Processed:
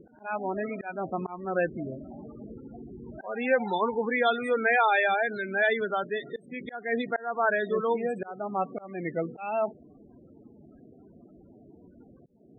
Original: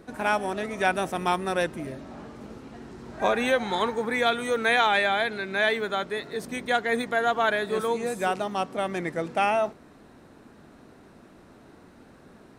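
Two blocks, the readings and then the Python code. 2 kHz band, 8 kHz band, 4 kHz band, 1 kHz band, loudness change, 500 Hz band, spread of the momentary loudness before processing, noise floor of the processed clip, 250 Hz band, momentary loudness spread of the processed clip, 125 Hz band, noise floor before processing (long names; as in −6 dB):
−2.5 dB, below −20 dB, −9.5 dB, −3.5 dB, −2.5 dB, −1.5 dB, 16 LU, −55 dBFS, −2.0 dB, 18 LU, −2.5 dB, −52 dBFS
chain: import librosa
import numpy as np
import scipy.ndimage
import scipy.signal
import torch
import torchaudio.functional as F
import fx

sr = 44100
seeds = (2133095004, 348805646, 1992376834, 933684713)

y = fx.spec_topn(x, sr, count=16)
y = fx.auto_swell(y, sr, attack_ms=314.0)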